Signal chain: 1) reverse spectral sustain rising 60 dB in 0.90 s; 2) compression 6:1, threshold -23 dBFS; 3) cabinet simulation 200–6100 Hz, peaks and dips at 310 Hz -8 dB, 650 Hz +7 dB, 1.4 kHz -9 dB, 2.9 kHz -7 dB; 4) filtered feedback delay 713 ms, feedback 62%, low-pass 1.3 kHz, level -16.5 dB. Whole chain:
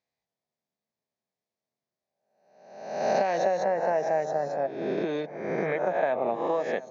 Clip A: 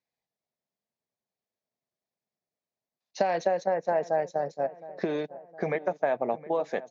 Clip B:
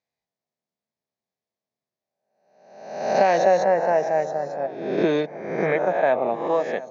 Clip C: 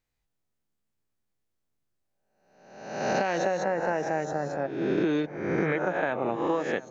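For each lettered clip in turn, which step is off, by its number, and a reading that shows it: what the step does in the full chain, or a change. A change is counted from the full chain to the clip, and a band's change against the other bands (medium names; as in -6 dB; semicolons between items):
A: 1, crest factor change +3.5 dB; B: 2, mean gain reduction 4.0 dB; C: 3, 500 Hz band -6.0 dB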